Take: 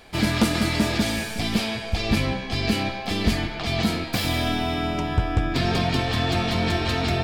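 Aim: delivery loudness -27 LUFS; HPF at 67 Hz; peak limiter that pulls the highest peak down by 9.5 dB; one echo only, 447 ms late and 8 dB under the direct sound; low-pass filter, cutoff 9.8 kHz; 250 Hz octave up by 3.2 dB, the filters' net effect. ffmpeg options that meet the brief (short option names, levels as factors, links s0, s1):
-af "highpass=67,lowpass=9800,equalizer=f=250:t=o:g=4,alimiter=limit=0.178:level=0:latency=1,aecho=1:1:447:0.398,volume=0.75"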